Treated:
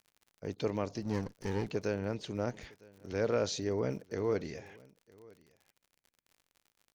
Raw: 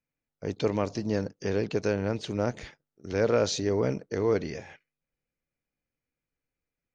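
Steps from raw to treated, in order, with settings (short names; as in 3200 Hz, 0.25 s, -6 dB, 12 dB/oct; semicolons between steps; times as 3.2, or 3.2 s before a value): 1.02–1.67 minimum comb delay 0.5 ms; crackle 56/s -43 dBFS; echo 0.958 s -24 dB; gain -6.5 dB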